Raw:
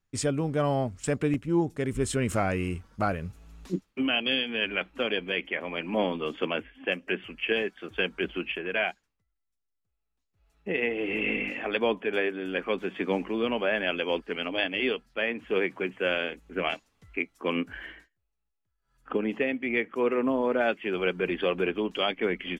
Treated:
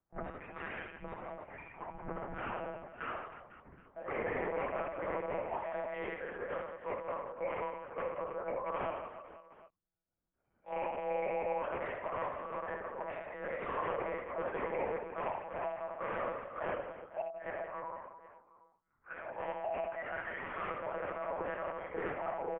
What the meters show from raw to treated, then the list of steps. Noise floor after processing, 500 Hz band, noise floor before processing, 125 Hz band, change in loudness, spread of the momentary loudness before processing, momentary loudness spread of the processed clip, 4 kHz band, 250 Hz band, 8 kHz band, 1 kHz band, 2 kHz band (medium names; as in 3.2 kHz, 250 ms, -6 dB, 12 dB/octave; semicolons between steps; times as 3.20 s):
-78 dBFS, -8.5 dB, -80 dBFS, -17.5 dB, -10.5 dB, 6 LU, 11 LU, under -25 dB, -18.0 dB, no reading, -3.0 dB, -13.0 dB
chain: spectrum inverted on a logarithmic axis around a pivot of 1.5 kHz; peaking EQ 1.7 kHz +2.5 dB 1.2 oct; harmonic-percussive split percussive -5 dB; wavefolder -31 dBFS; distance through air 350 m; reverse bouncing-ball echo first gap 70 ms, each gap 1.4×, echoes 5; monotone LPC vocoder at 8 kHz 160 Hz; mistuned SSB -300 Hz 330–2600 Hz; trim +2.5 dB